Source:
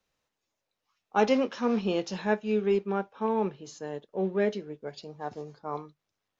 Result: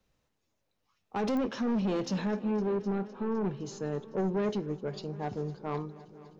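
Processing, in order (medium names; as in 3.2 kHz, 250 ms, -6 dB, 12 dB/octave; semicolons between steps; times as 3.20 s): bass shelf 350 Hz +12 dB; peak limiter -16.5 dBFS, peak gain reduction 10 dB; saturation -25.5 dBFS, distortion -10 dB; 2.39–3.45 s: distance through air 440 m; multi-head delay 255 ms, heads all three, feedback 58%, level -23 dB; clicks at 1.37 s, -24 dBFS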